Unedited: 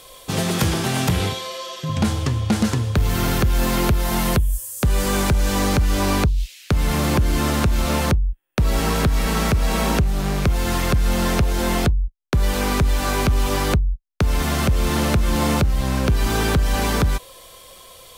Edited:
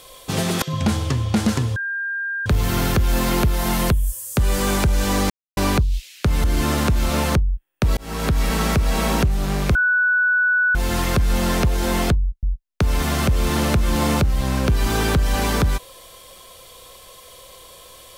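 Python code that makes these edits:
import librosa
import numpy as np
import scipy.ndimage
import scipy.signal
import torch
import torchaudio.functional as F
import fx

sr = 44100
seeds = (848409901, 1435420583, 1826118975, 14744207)

y = fx.edit(x, sr, fx.cut(start_s=0.62, length_s=1.16),
    fx.insert_tone(at_s=2.92, length_s=0.7, hz=1600.0, db=-22.5),
    fx.silence(start_s=5.76, length_s=0.27),
    fx.cut(start_s=6.9, length_s=0.3),
    fx.fade_in_span(start_s=8.73, length_s=0.39),
    fx.insert_tone(at_s=10.51, length_s=1.0, hz=1480.0, db=-14.5),
    fx.cut(start_s=12.19, length_s=1.64), tone=tone)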